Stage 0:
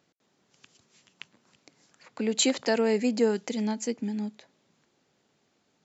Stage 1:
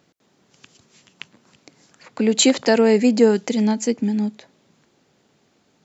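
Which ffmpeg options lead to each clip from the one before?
-af "lowshelf=f=460:g=3.5,volume=2.37"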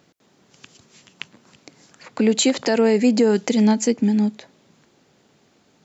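-af "alimiter=limit=0.282:level=0:latency=1:release=161,volume=1.41"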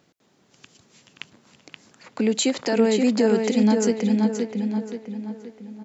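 -filter_complex "[0:a]asplit=2[s0][s1];[s1]adelay=526,lowpass=f=4000:p=1,volume=0.631,asplit=2[s2][s3];[s3]adelay=526,lowpass=f=4000:p=1,volume=0.46,asplit=2[s4][s5];[s5]adelay=526,lowpass=f=4000:p=1,volume=0.46,asplit=2[s6][s7];[s7]adelay=526,lowpass=f=4000:p=1,volume=0.46,asplit=2[s8][s9];[s9]adelay=526,lowpass=f=4000:p=1,volume=0.46,asplit=2[s10][s11];[s11]adelay=526,lowpass=f=4000:p=1,volume=0.46[s12];[s0][s2][s4][s6][s8][s10][s12]amix=inputs=7:normalize=0,volume=0.631"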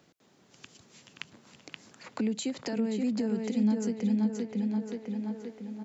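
-filter_complex "[0:a]acrossover=split=190[s0][s1];[s1]acompressor=threshold=0.0224:ratio=10[s2];[s0][s2]amix=inputs=2:normalize=0,volume=0.891"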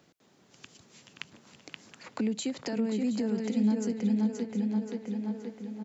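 -af "aecho=1:1:721:0.2"

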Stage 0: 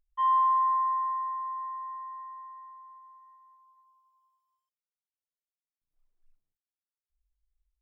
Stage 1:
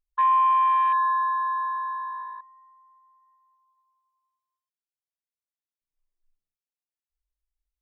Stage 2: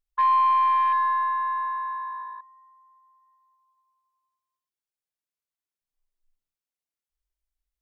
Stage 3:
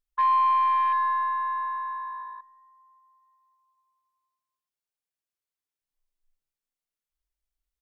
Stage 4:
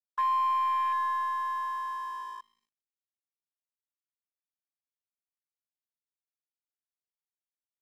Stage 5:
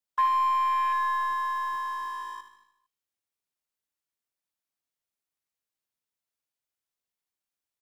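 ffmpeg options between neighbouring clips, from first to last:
-af "afwtdn=0.0224,acompressor=threshold=0.0355:ratio=2.5,volume=2.82"
-af "aeval=exprs='0.188*(cos(1*acos(clip(val(0)/0.188,-1,1)))-cos(1*PI/2))+0.00299*(cos(3*acos(clip(val(0)/0.188,-1,1)))-cos(3*PI/2))+0.00335*(cos(4*acos(clip(val(0)/0.188,-1,1)))-cos(4*PI/2))':c=same"
-filter_complex "[0:a]asplit=2[s0][s1];[s1]adelay=194,lowpass=f=1200:p=1,volume=0.0794,asplit=2[s2][s3];[s3]adelay=194,lowpass=f=1200:p=1,volume=0.54,asplit=2[s4][s5];[s5]adelay=194,lowpass=f=1200:p=1,volume=0.54,asplit=2[s6][s7];[s7]adelay=194,lowpass=f=1200:p=1,volume=0.54[s8];[s0][s2][s4][s6][s8]amix=inputs=5:normalize=0,volume=0.841"
-af "acompressor=threshold=0.00891:ratio=1.5,aeval=exprs='sgn(val(0))*max(abs(val(0))-0.00188,0)':c=same,volume=1.33"
-filter_complex "[0:a]aecho=1:1:76|152|228|304|380|456:0.316|0.171|0.0922|0.0498|0.0269|0.0145,acrossover=split=190|800[s0][s1][s2];[s0]acrusher=bits=3:mode=log:mix=0:aa=0.000001[s3];[s3][s1][s2]amix=inputs=3:normalize=0,volume=1.68"

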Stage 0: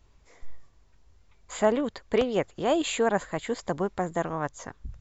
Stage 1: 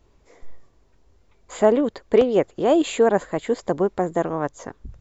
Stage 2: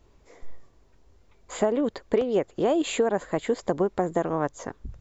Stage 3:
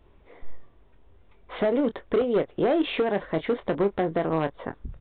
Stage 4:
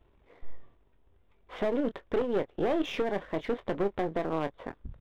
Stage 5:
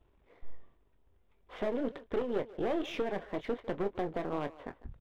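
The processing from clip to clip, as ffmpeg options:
-af "equalizer=f=390:w=0.67:g=9"
-af "acompressor=threshold=0.112:ratio=10"
-filter_complex "[0:a]aresample=8000,volume=9.44,asoftclip=hard,volume=0.106,aresample=44100,asplit=2[s0][s1];[s1]adelay=25,volume=0.282[s2];[s0][s2]amix=inputs=2:normalize=0,volume=1.19"
-af "aeval=exprs='if(lt(val(0),0),0.447*val(0),val(0))':c=same,volume=0.708"
-filter_complex "[0:a]flanger=delay=0.2:depth=5.3:regen=-65:speed=2:shape=sinusoidal,asplit=2[s0][s1];[s1]adelay=150,highpass=300,lowpass=3400,asoftclip=type=hard:threshold=0.0282,volume=0.158[s2];[s0][s2]amix=inputs=2:normalize=0"

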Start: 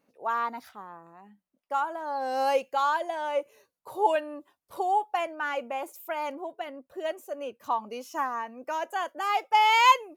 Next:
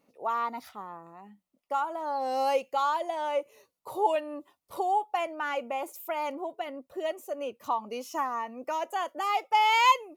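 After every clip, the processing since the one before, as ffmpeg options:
-filter_complex "[0:a]bandreject=f=1600:w=5.9,asplit=2[s0][s1];[s1]acompressor=threshold=0.02:ratio=6,volume=1[s2];[s0][s2]amix=inputs=2:normalize=0,volume=0.668"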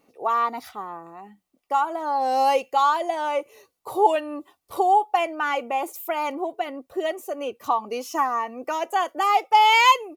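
-af "aecho=1:1:2.6:0.34,volume=2.11"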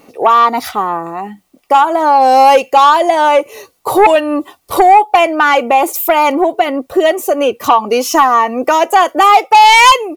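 -filter_complex "[0:a]asplit=2[s0][s1];[s1]acompressor=threshold=0.0355:ratio=6,volume=1.33[s2];[s0][s2]amix=inputs=2:normalize=0,aeval=exprs='0.596*sin(PI/2*1.78*val(0)/0.596)':c=same,volume=1.41"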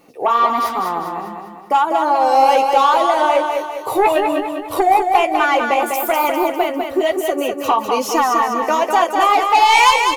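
-filter_complex "[0:a]flanger=delay=5.6:depth=8.1:regen=-37:speed=1.1:shape=sinusoidal,asplit=2[s0][s1];[s1]aecho=0:1:200|400|600|800|1000|1200:0.562|0.264|0.124|0.0584|0.0274|0.0129[s2];[s0][s2]amix=inputs=2:normalize=0,volume=0.708"

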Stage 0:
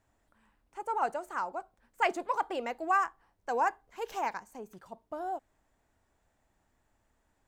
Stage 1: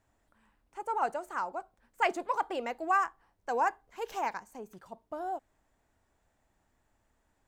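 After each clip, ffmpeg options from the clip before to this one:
-af anull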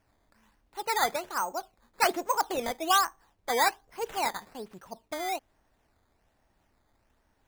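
-af "acrusher=samples=11:mix=1:aa=0.000001:lfo=1:lforange=11:lforate=1.2,volume=1.5"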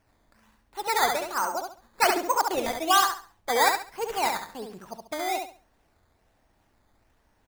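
-af "aecho=1:1:69|138|207|276:0.562|0.152|0.041|0.0111,volume=1.33"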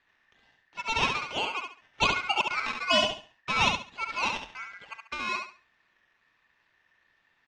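-af "aeval=exprs='val(0)*sin(2*PI*1800*n/s)':c=same,lowpass=f=5700:w=0.5412,lowpass=f=5700:w=1.3066"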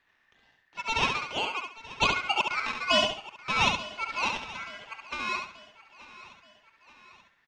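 -af "aecho=1:1:881|1762|2643|3524:0.126|0.0642|0.0327|0.0167"

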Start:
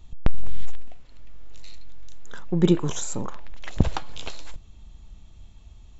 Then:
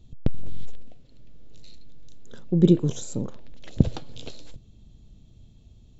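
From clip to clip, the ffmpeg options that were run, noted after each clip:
-af "equalizer=f=125:t=o:w=1:g=11,equalizer=f=250:t=o:w=1:g=8,equalizer=f=500:t=o:w=1:g=8,equalizer=f=1000:t=o:w=1:g=-8,equalizer=f=2000:t=o:w=1:g=-4,equalizer=f=4000:t=o:w=1:g=5,volume=0.422"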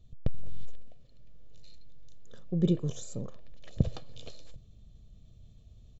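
-af "aecho=1:1:1.7:0.45,areverse,acompressor=mode=upward:threshold=0.0126:ratio=2.5,areverse,volume=0.398"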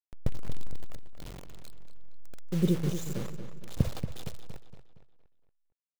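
-filter_complex "[0:a]acrusher=bits=6:mix=0:aa=0.000001,asplit=2[s0][s1];[s1]adelay=232,lowpass=f=4300:p=1,volume=0.355,asplit=2[s2][s3];[s3]adelay=232,lowpass=f=4300:p=1,volume=0.46,asplit=2[s4][s5];[s5]adelay=232,lowpass=f=4300:p=1,volume=0.46,asplit=2[s6][s7];[s7]adelay=232,lowpass=f=4300:p=1,volume=0.46,asplit=2[s8][s9];[s9]adelay=232,lowpass=f=4300:p=1,volume=0.46[s10];[s0][s2][s4][s6][s8][s10]amix=inputs=6:normalize=0"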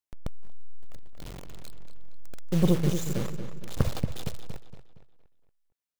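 -af "aeval=exprs='0.335*(cos(1*acos(clip(val(0)/0.335,-1,1)))-cos(1*PI/2))+0.0266*(cos(5*acos(clip(val(0)/0.335,-1,1)))-cos(5*PI/2))+0.0596*(cos(6*acos(clip(val(0)/0.335,-1,1)))-cos(6*PI/2))':c=same"

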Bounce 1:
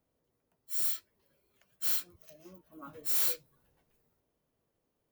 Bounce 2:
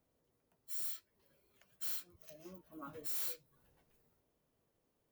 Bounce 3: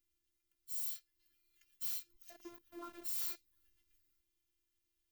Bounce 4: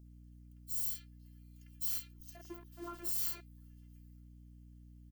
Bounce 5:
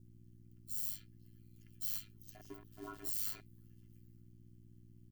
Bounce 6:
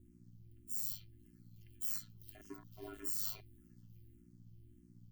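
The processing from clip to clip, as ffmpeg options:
-af "acompressor=threshold=0.00562:ratio=2"
-filter_complex "[0:a]acrossover=split=210|1800[s0][s1][s2];[s1]aeval=exprs='val(0)*gte(abs(val(0)),0.00188)':c=same[s3];[s0][s3][s2]amix=inputs=3:normalize=0,afftfilt=real='hypot(re,im)*cos(PI*b)':imag='0':win_size=512:overlap=0.75,volume=1.5"
-filter_complex "[0:a]acrossover=split=3300[s0][s1];[s0]adelay=50[s2];[s2][s1]amix=inputs=2:normalize=0,aeval=exprs='val(0)+0.00126*(sin(2*PI*60*n/s)+sin(2*PI*2*60*n/s)/2+sin(2*PI*3*60*n/s)/3+sin(2*PI*4*60*n/s)/4+sin(2*PI*5*60*n/s)/5)':c=same,volume=1.5"
-af "aeval=exprs='val(0)*sin(2*PI*52*n/s)':c=same"
-filter_complex "[0:a]asplit=2[s0][s1];[s1]afreqshift=-1.7[s2];[s0][s2]amix=inputs=2:normalize=1,volume=1.41"

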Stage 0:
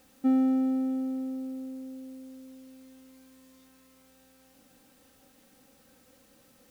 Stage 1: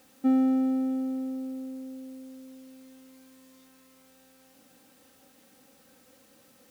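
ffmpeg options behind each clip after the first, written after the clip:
-af "highpass=f=140:p=1,volume=1.26"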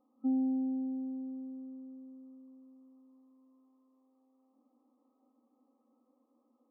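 -af "tiltshelf=f=680:g=5,afftfilt=real='re*between(b*sr/4096,220,1300)':imag='im*between(b*sr/4096,220,1300)':win_size=4096:overlap=0.75,equalizer=f=470:t=o:w=2.4:g=-14,volume=0.794"

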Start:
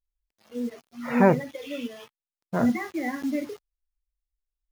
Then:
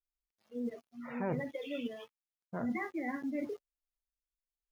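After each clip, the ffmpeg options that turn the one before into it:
-af "afftdn=nr=12:nf=-43,areverse,acompressor=threshold=0.0251:ratio=5,areverse,volume=0.794"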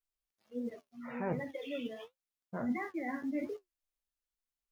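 -af "flanger=delay=9.2:depth=7.5:regen=57:speed=1.4:shape=triangular,volume=1.58"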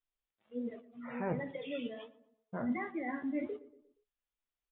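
-filter_complex "[0:a]asplit=2[s0][s1];[s1]adelay=118,lowpass=f=1400:p=1,volume=0.15,asplit=2[s2][s3];[s3]adelay=118,lowpass=f=1400:p=1,volume=0.48,asplit=2[s4][s5];[s5]adelay=118,lowpass=f=1400:p=1,volume=0.48,asplit=2[s6][s7];[s7]adelay=118,lowpass=f=1400:p=1,volume=0.48[s8];[s0][s2][s4][s6][s8]amix=inputs=5:normalize=0,aresample=8000,aresample=44100"

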